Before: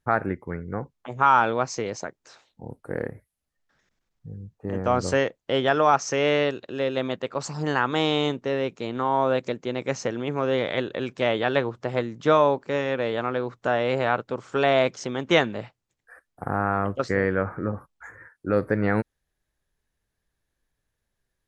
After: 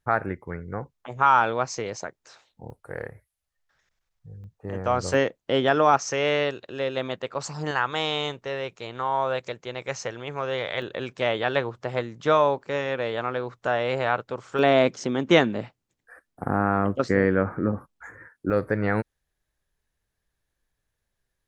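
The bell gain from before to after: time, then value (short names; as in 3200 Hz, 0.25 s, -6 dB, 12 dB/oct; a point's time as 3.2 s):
bell 250 Hz 1.4 oct
-4.5 dB
from 2.7 s -13.5 dB
from 4.44 s -6.5 dB
from 5.14 s +2 dB
from 5.97 s -5.5 dB
from 7.71 s -13.5 dB
from 10.82 s -5.5 dB
from 14.59 s +5.5 dB
from 18.5 s -3 dB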